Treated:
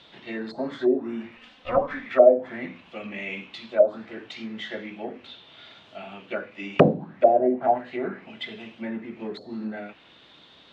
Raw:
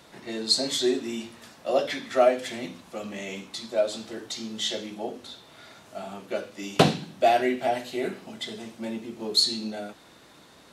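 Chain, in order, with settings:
0:01.37–0:02.06: lower of the sound and its delayed copy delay 3.9 ms
dynamic equaliser 220 Hz, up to +5 dB, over −39 dBFS, Q 0.88
envelope-controlled low-pass 550–3,500 Hz down, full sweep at −16.5 dBFS
level −3.5 dB

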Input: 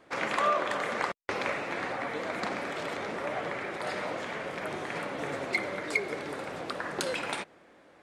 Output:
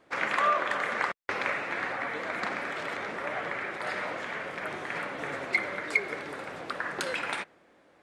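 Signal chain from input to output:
dynamic equaliser 1,700 Hz, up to +8 dB, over −45 dBFS, Q 0.88
level −3.5 dB

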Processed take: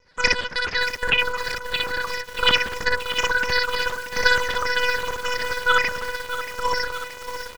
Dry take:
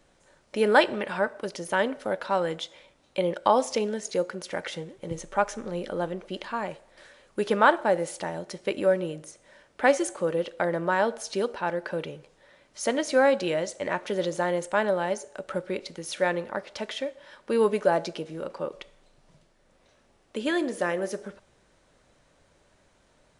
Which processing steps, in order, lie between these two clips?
rippled gain that drifts along the octave scale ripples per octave 0.76, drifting −1.4 Hz, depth 16 dB
low-pass filter 1,900 Hz 24 dB per octave
parametric band 670 Hz −3.5 dB 0.26 octaves
loudspeakers that aren't time-aligned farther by 35 metres −11 dB, 64 metres −1 dB
one-pitch LPC vocoder at 8 kHz 160 Hz
change of speed 3.09×
feedback echo at a low word length 629 ms, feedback 80%, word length 5 bits, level −10 dB
level −1.5 dB

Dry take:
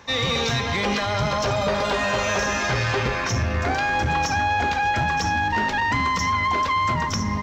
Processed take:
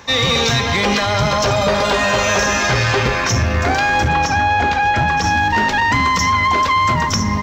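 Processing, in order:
high-shelf EQ 5,500 Hz +5 dB, from 0:04.08 −5.5 dB, from 0:05.24 +4.5 dB
level +6.5 dB

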